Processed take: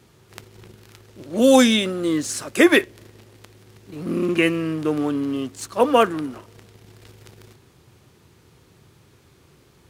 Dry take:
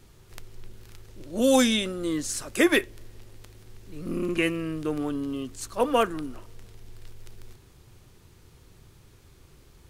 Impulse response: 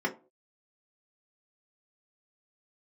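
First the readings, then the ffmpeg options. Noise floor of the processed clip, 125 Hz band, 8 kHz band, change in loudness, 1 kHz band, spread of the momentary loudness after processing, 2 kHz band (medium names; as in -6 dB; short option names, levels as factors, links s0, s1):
-55 dBFS, +5.5 dB, +3.0 dB, +6.5 dB, +6.5 dB, 15 LU, +6.0 dB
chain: -filter_complex "[0:a]asplit=2[s0][s1];[s1]acrusher=bits=5:mix=0:aa=0.5,volume=0.376[s2];[s0][s2]amix=inputs=2:normalize=0,highpass=110,highshelf=f=4900:g=-5,volume=1.58"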